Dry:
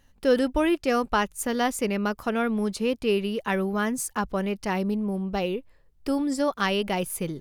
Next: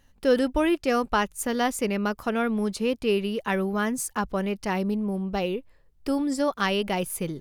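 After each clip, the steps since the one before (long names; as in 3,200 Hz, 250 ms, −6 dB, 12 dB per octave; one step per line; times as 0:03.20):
no processing that can be heard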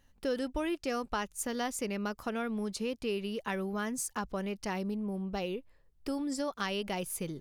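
dynamic equaliser 5,900 Hz, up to +5 dB, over −48 dBFS, Q 0.93
downward compressor 2 to 1, threshold −28 dBFS, peak gain reduction 7.5 dB
level −5.5 dB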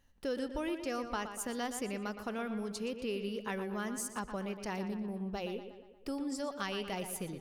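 tape delay 119 ms, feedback 58%, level −8 dB, low-pass 3,900 Hz
level −3.5 dB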